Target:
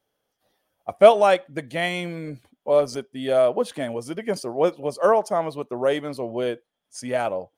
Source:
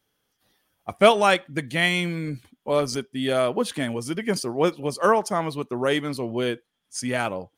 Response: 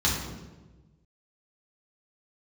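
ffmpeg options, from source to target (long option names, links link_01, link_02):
-af "equalizer=frequency=610:width_type=o:width=1.1:gain=11.5,volume=-6dB"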